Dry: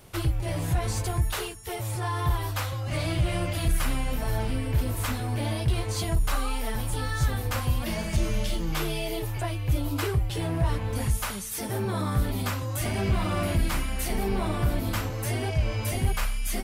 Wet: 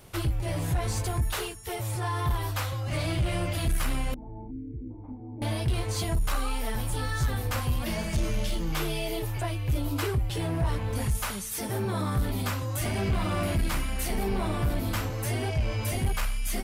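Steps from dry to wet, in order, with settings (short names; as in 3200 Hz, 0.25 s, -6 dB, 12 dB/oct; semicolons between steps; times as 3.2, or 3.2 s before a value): 4.14–5.42 vocal tract filter u; soft clip -18.5 dBFS, distortion -19 dB; 4.51–4.91 spectral gain 510–1400 Hz -27 dB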